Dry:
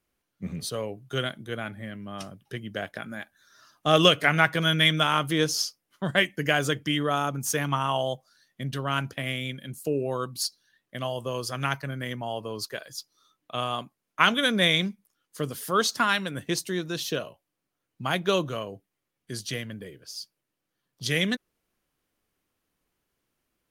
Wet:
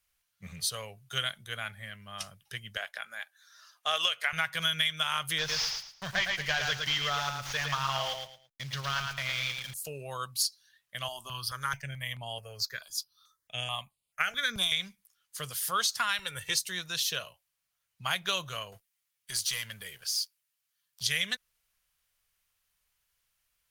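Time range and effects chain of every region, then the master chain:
2.77–4.33 HPF 440 Hz + high shelf 4800 Hz -5 dB
5.38–9.74 CVSD 32 kbps + sample gate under -45.5 dBFS + feedback echo 0.111 s, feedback 25%, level -5 dB
11.08–14.72 low shelf 400 Hz +4 dB + step phaser 4.6 Hz 500–5900 Hz
16.19–16.62 upward compressor, threshold -30 dBFS + comb 2.2 ms, depth 63%
18.72–21.03 tilt +1.5 dB/oct + compressor 1.5:1, threshold -48 dBFS + sample leveller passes 2
whole clip: passive tone stack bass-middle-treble 10-0-10; compressor 12:1, threshold -30 dBFS; gain +5.5 dB

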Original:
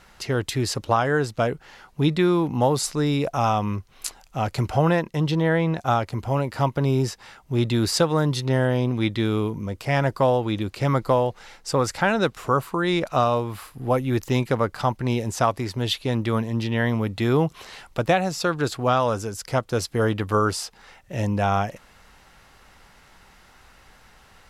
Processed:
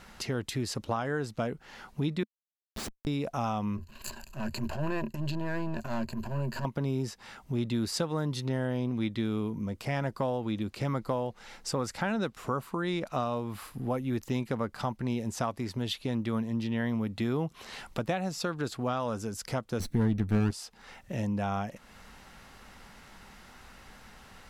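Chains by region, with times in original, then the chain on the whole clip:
2.23–3.07 median filter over 3 samples + steep high-pass 2700 Hz 96 dB/oct + Schmitt trigger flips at -28.5 dBFS
3.77–6.65 half-wave gain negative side -12 dB + ripple EQ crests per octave 1.4, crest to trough 14 dB + transient shaper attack -11 dB, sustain +7 dB
19.8–20.51 minimum comb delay 0.5 ms + low shelf 330 Hz +12 dB
whole clip: bell 220 Hz +7 dB 0.57 oct; compressor 2:1, threshold -37 dBFS

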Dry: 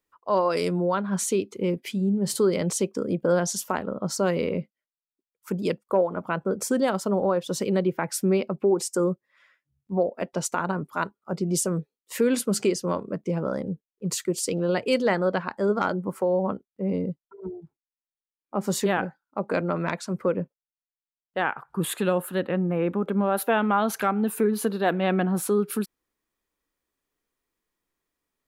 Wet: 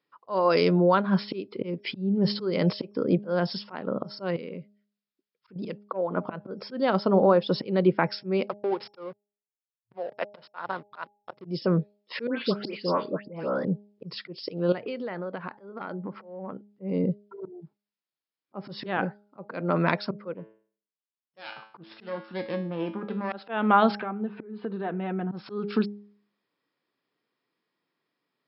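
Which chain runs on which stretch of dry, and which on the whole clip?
4.36–5.56 compressor 2.5:1, threshold -44 dBFS + bell 860 Hz -9 dB 0.63 oct
8.48–11.45 three-band isolator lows -19 dB, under 530 Hz, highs -17 dB, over 4700 Hz + backlash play -36.5 dBFS
12.27–13.65 HPF 340 Hz 6 dB/oct + dispersion highs, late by 0.126 s, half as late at 2100 Hz
14.72–16.7 LPF 3400 Hz + compressor 10:1, threshold -34 dBFS
20.33–23.33 self-modulated delay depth 0.25 ms + resonator 110 Hz, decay 0.44 s, mix 80%
23.95–25.32 notch comb 280 Hz + compressor 3:1, threshold -33 dBFS + air absorption 470 m
whole clip: auto swell 0.263 s; FFT band-pass 110–5400 Hz; de-hum 205.3 Hz, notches 4; gain +4 dB

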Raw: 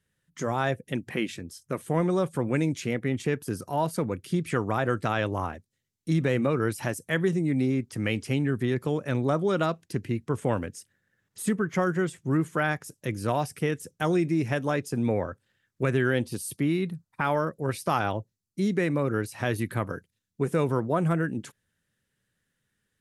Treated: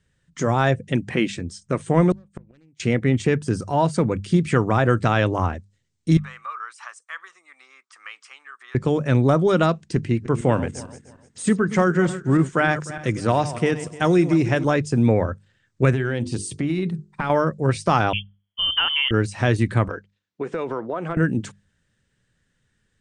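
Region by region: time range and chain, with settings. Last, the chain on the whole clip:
2.11–2.8 self-modulated delay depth 0.25 ms + flipped gate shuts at -19 dBFS, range -38 dB
6.17–8.75 compressor 1.5:1, threshold -30 dBFS + ladder high-pass 1100 Hz, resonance 75%
9.96–14.65 regenerating reverse delay 0.151 s, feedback 48%, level -13 dB + de-esser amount 35% + low shelf 85 Hz -9 dB
15.91–17.3 notches 50/100/150/200/250/300/350/400/450 Hz + compressor, threshold -27 dBFS
18.13–19.11 low shelf 190 Hz -10.5 dB + inverted band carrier 3300 Hz
19.88–21.17 BPF 380–3800 Hz + compressor 4:1, threshold -30 dBFS
whole clip: steep low-pass 9000 Hz 72 dB/oct; low shelf 110 Hz +10.5 dB; notches 50/100/150/200 Hz; gain +6.5 dB

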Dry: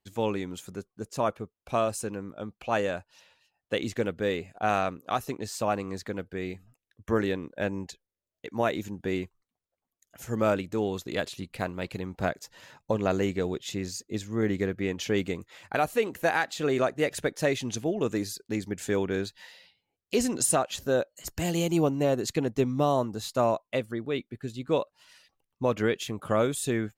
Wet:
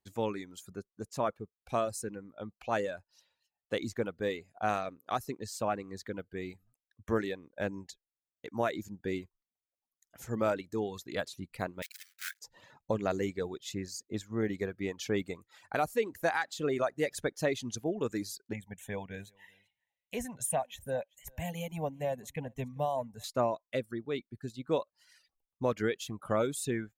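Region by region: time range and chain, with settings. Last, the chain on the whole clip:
11.82–12.41 block floating point 3-bit + steep high-pass 1500 Hz 48 dB/oct + high shelf 11000 Hz +5 dB
18.53–23.24 dynamic EQ 7500 Hz, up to -5 dB, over -49 dBFS, Q 3.1 + fixed phaser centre 1300 Hz, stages 6 + echo 0.388 s -20.5 dB
whole clip: reverb removal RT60 1.1 s; bell 2800 Hz -4.5 dB 0.34 oct; gain -4 dB

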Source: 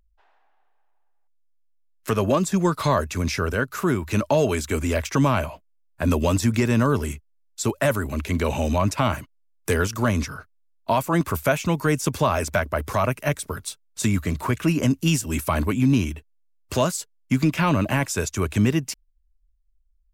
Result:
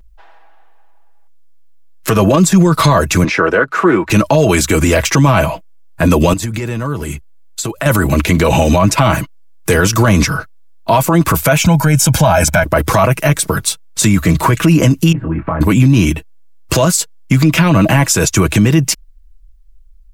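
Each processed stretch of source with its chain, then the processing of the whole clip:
3.24–4.1 LPF 8100 Hz + three-band isolator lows -19 dB, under 250 Hz, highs -15 dB, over 2600 Hz + Doppler distortion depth 0.1 ms
6.33–7.86 notch 5500 Hz, Q 9 + compressor, threshold -34 dBFS
11.61–12.64 bell 4400 Hz -6 dB 0.21 oct + comb 1.3 ms, depth 73%
15.12–15.61 inverse Chebyshev low-pass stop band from 5500 Hz, stop band 60 dB + compressor, threshold -33 dBFS + doubler 24 ms -5.5 dB
whole clip: low shelf 150 Hz +4 dB; comb 6.1 ms, depth 52%; maximiser +17 dB; gain -1 dB

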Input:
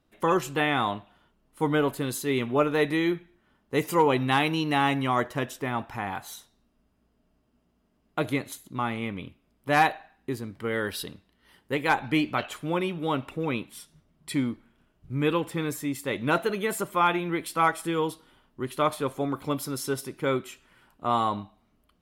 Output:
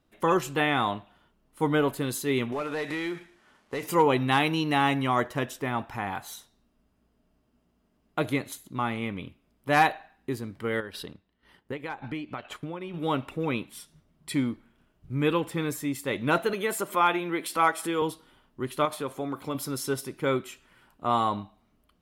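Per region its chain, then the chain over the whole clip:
2.52–3.83 CVSD 64 kbps + overdrive pedal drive 14 dB, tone 3500 Hz, clips at -10.5 dBFS + compressor 5:1, threshold -29 dBFS
10.8–12.94 high shelf 5300 Hz -11 dB + compressor 4:1, threshold -34 dBFS + transient shaper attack +4 dB, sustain -7 dB
16.53–18.02 HPF 230 Hz + upward compressor, threshold -28 dBFS
18.85–19.55 low shelf 88 Hz -11.5 dB + compressor 2:1, threshold -29 dBFS
whole clip: dry

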